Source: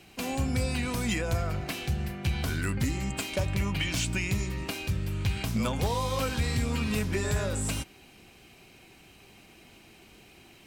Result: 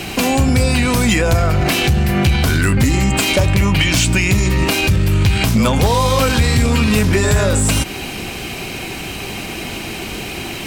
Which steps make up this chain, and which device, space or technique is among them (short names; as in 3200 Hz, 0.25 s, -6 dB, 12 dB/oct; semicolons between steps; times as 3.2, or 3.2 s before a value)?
loud club master (compressor 1.5:1, threshold -35 dBFS, peak gain reduction 4.5 dB; hard clip -26 dBFS, distortion -25 dB; maximiser +34.5 dB); gain -6.5 dB